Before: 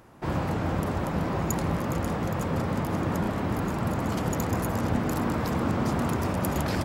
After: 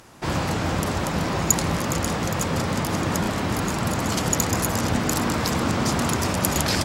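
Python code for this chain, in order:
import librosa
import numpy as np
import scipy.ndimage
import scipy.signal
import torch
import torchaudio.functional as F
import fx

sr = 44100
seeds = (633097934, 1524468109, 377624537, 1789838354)

y = fx.peak_eq(x, sr, hz=6300.0, db=13.5, octaves=2.7)
y = y * 10.0 ** (2.5 / 20.0)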